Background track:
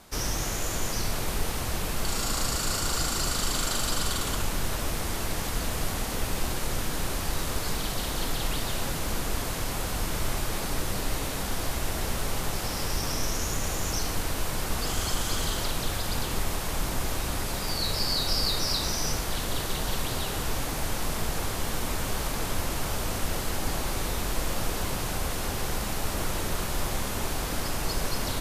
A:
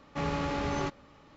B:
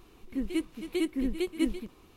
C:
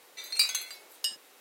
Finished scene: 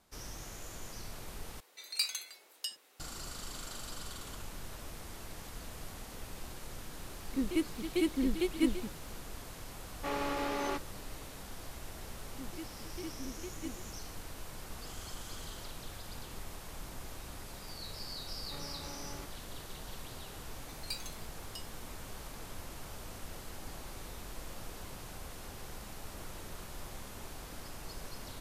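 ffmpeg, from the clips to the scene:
-filter_complex "[3:a]asplit=2[s0][s1];[2:a]asplit=2[s2][s3];[1:a]asplit=2[s4][s5];[0:a]volume=0.158[s6];[s4]highpass=f=270:w=0.5412,highpass=f=270:w=1.3066[s7];[s5]alimiter=level_in=1.88:limit=0.0631:level=0:latency=1:release=71,volume=0.531[s8];[s6]asplit=2[s9][s10];[s9]atrim=end=1.604[s11];[s0]atrim=end=1.4,asetpts=PTS-STARTPTS,volume=0.422[s12];[s10]atrim=start=2.996[s13];[s2]atrim=end=2.16,asetpts=PTS-STARTPTS,volume=0.891,afade=t=in:d=0.004:c=hsin,afade=t=out:st=2.156:d=0.004:c=hsin,adelay=7010[s14];[s7]atrim=end=1.36,asetpts=PTS-STARTPTS,volume=0.794,afade=t=in:d=0.004:c=hsin,afade=t=out:st=1.356:d=0.004:c=hsin,adelay=9880[s15];[s3]atrim=end=2.16,asetpts=PTS-STARTPTS,volume=0.178,afade=t=in:d=0.004:c=hsin,afade=t=out:st=2.156:d=0.004:c=hsin,adelay=12030[s16];[s8]atrim=end=1.36,asetpts=PTS-STARTPTS,volume=0.299,afade=t=in:d=0.004:c=hsin,afade=t=out:st=1.356:d=0.004:c=hsin,adelay=18360[s17];[s1]atrim=end=1.4,asetpts=PTS-STARTPTS,volume=0.158,afade=t=in:d=0.004:c=hsin,afade=t=out:st=1.396:d=0.004:c=hsin,adelay=20510[s18];[s11][s12]acrossfade=d=0.004:c1=hsin:c2=hsin[s19];[s19][s13]acrossfade=d=0.004:c1=hsin:c2=hsin[s20];[s20][s14][s15][s16][s17][s18]amix=inputs=6:normalize=0"

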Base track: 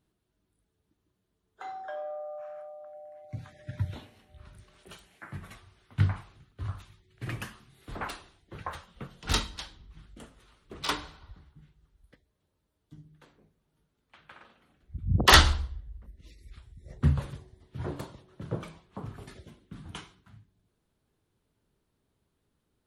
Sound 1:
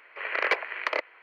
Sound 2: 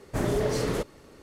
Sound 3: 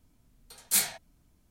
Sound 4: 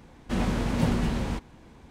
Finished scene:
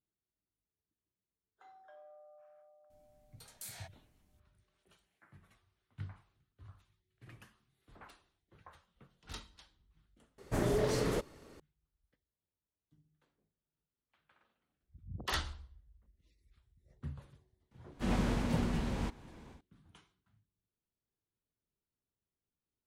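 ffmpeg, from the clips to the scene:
-filter_complex "[0:a]volume=0.106[s0];[3:a]acompressor=threshold=0.0126:ratio=6:attack=3.2:release=140:knee=1:detection=peak[s1];[4:a]dynaudnorm=f=200:g=3:m=5.62[s2];[s1]atrim=end=1.5,asetpts=PTS-STARTPTS,volume=0.473,afade=t=in:d=0.004:c=hsin,afade=t=out:st=1.496:d=0.004:c=hsin,adelay=2900[s3];[2:a]atrim=end=1.22,asetpts=PTS-STARTPTS,volume=0.562,afade=t=in:d=0.004:c=hsin,afade=t=out:st=1.216:d=0.004:c=hsin,adelay=10380[s4];[s2]atrim=end=1.9,asetpts=PTS-STARTPTS,volume=0.141,afade=t=in:d=0.004:c=hsin,afade=t=out:st=1.896:d=0.004:c=hsin,adelay=17710[s5];[s0][s3][s4][s5]amix=inputs=4:normalize=0"

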